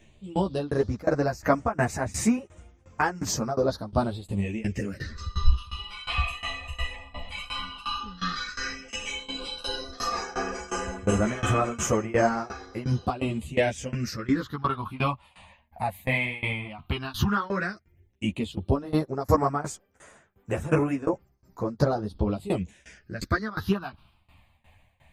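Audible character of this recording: phasing stages 6, 0.11 Hz, lowest notch 370–4300 Hz; tremolo saw down 2.8 Hz, depth 95%; a shimmering, thickened sound

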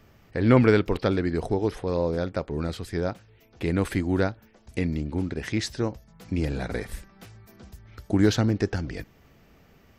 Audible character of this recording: noise floor -58 dBFS; spectral tilt -6.5 dB/octave

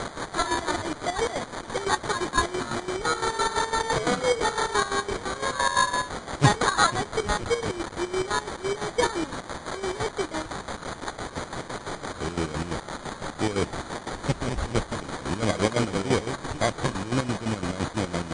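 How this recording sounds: a quantiser's noise floor 6-bit, dither triangular; chopped level 5.9 Hz, depth 65%, duty 50%; aliases and images of a low sample rate 2.7 kHz, jitter 0%; MP3

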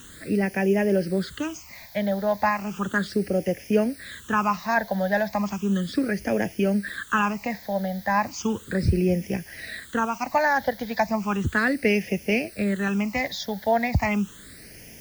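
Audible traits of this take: a quantiser's noise floor 8-bit, dither triangular; phasing stages 8, 0.35 Hz, lowest notch 350–1200 Hz

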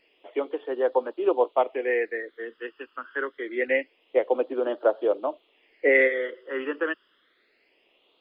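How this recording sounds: phasing stages 12, 0.26 Hz, lowest notch 680–2100 Hz

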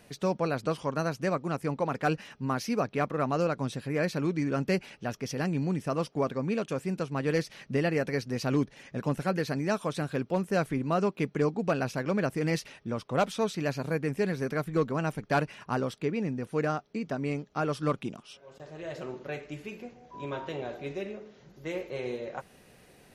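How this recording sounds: noise floor -58 dBFS; spectral tilt -6.0 dB/octave

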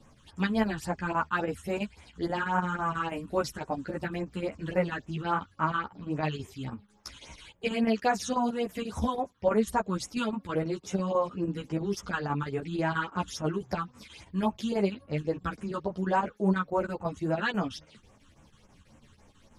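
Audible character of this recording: phasing stages 8, 3.6 Hz, lowest notch 630–4600 Hz; chopped level 6.1 Hz, depth 60%, duty 80%; a shimmering, thickened sound

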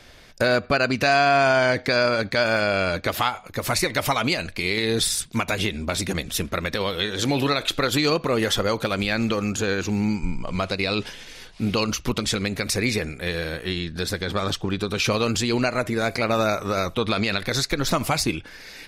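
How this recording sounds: noise floor -45 dBFS; spectral tilt -4.0 dB/octave

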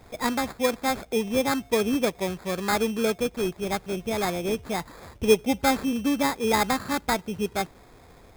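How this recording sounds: aliases and images of a low sample rate 2.9 kHz, jitter 0%

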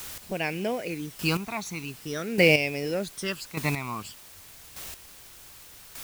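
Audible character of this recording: phasing stages 12, 0.47 Hz, lowest notch 520–1300 Hz; a quantiser's noise floor 8-bit, dither triangular; chopped level 0.84 Hz, depth 65%, duty 15%

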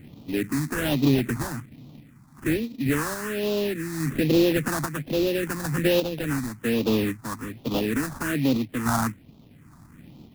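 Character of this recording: aliases and images of a low sample rate 2.2 kHz, jitter 20%; random-step tremolo; phasing stages 4, 1.2 Hz, lowest notch 460–1700 Hz

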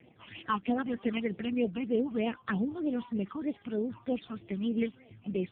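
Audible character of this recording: phasing stages 8, 3.2 Hz, lowest notch 510–1500 Hz; tremolo triangle 6.1 Hz, depth 30%; AMR-NB

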